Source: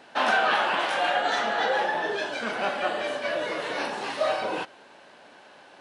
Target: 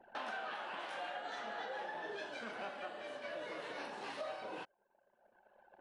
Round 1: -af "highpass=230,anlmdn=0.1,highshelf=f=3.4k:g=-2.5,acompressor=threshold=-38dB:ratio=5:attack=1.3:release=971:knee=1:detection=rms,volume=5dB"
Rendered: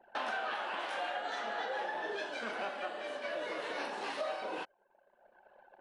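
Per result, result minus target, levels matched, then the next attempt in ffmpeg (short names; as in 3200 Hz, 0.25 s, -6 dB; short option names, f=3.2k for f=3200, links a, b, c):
compressor: peak gain reduction -6 dB; 125 Hz band -6.0 dB
-af "highpass=230,anlmdn=0.1,highshelf=f=3.4k:g=-2.5,acompressor=threshold=-45.5dB:ratio=5:attack=1.3:release=971:knee=1:detection=rms,volume=5dB"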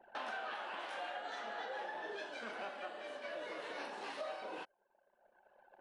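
125 Hz band -6.0 dB
-af "highpass=73,anlmdn=0.1,highshelf=f=3.4k:g=-2.5,acompressor=threshold=-45.5dB:ratio=5:attack=1.3:release=971:knee=1:detection=rms,volume=5dB"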